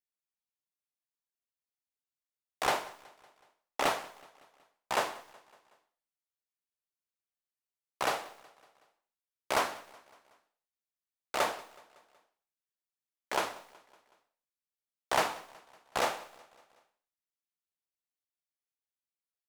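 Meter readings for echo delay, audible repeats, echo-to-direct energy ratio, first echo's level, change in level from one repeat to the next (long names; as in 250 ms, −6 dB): 186 ms, 3, −21.0 dB, −22.5 dB, −5.0 dB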